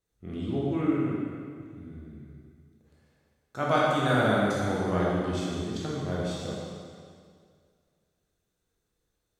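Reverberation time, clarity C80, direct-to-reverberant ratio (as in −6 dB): 2.1 s, 0.0 dB, −6.0 dB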